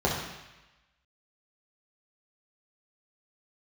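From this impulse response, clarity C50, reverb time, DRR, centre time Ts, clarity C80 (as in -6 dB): 3.0 dB, 1.0 s, -4.5 dB, 49 ms, 5.5 dB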